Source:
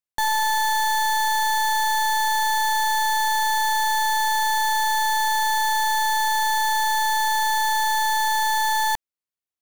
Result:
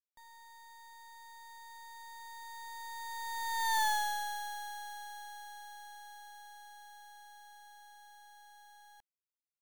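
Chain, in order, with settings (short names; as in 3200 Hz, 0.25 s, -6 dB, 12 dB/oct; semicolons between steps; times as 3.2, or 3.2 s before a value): Doppler pass-by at 3.81, 19 m/s, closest 3.2 m; gain -8 dB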